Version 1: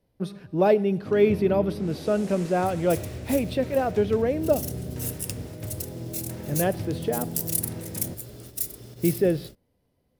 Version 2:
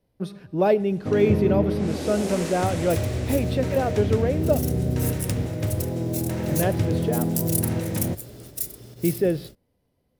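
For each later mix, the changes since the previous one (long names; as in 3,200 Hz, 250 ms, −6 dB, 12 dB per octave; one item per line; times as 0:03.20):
first sound +10.0 dB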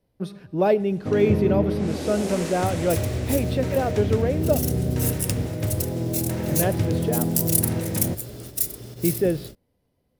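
second sound +5.0 dB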